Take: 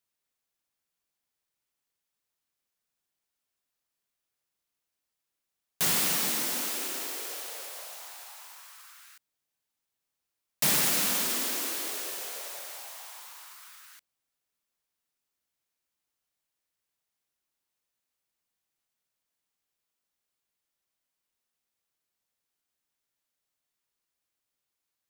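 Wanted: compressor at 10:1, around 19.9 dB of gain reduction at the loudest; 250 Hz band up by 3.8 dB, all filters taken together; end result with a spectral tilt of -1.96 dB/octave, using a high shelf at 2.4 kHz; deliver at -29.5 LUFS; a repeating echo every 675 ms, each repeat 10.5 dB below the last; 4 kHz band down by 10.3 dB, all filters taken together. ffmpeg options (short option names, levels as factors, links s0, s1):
-af "equalizer=f=250:t=o:g=5,highshelf=f=2400:g=-6.5,equalizer=f=4000:t=o:g=-7.5,acompressor=threshold=0.00447:ratio=10,aecho=1:1:675|1350|2025:0.299|0.0896|0.0269,volume=10"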